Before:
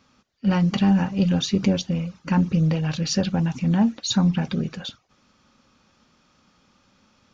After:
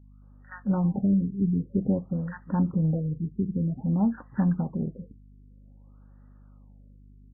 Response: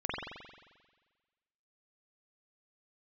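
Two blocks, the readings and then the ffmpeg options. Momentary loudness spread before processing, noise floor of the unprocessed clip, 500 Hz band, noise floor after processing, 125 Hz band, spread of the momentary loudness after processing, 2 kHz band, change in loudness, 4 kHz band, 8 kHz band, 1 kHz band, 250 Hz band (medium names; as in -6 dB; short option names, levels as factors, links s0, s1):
8 LU, -63 dBFS, -6.0 dB, -52 dBFS, -4.5 dB, 8 LU, -12.5 dB, -5.0 dB, under -40 dB, no reading, -8.0 dB, -4.5 dB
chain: -filter_complex "[0:a]acrossover=split=1300[s0][s1];[s0]adelay=220[s2];[s2][s1]amix=inputs=2:normalize=0,aeval=exprs='val(0)+0.00501*(sin(2*PI*50*n/s)+sin(2*PI*2*50*n/s)/2+sin(2*PI*3*50*n/s)/3+sin(2*PI*4*50*n/s)/4+sin(2*PI*5*50*n/s)/5)':c=same,afftfilt=real='re*lt(b*sr/1024,430*pow(2000/430,0.5+0.5*sin(2*PI*0.52*pts/sr)))':imag='im*lt(b*sr/1024,430*pow(2000/430,0.5+0.5*sin(2*PI*0.52*pts/sr)))':win_size=1024:overlap=0.75,volume=0.596"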